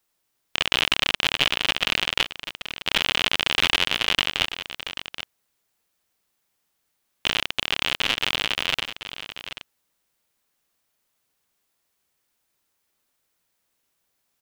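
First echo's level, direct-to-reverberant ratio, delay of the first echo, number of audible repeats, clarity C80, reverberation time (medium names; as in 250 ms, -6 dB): -11.5 dB, no reverb, 785 ms, 1, no reverb, no reverb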